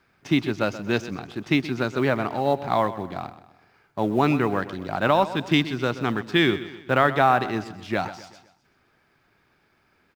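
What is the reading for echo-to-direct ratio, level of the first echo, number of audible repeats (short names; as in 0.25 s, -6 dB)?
-13.5 dB, -14.5 dB, 3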